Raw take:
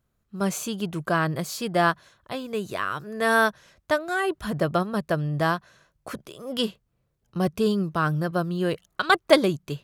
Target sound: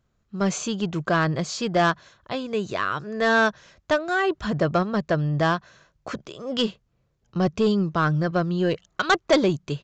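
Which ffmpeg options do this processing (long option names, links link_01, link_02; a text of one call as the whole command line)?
ffmpeg -i in.wav -af "aresample=16000,asoftclip=type=tanh:threshold=-15.5dB,aresample=44100,volume=3.5dB" out.wav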